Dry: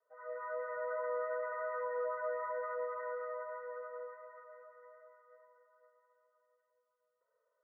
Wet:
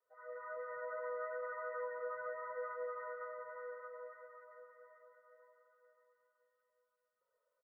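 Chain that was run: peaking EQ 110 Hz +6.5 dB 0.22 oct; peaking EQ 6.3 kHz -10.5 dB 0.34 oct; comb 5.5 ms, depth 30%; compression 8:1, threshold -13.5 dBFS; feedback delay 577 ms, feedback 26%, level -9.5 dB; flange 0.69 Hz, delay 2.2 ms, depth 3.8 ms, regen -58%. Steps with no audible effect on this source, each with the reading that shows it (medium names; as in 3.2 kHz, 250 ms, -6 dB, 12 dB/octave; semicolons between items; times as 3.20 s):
peaking EQ 6.3 kHz: input has nothing above 2 kHz; compression, threshold -13.5 dBFS: peak at its input -28.0 dBFS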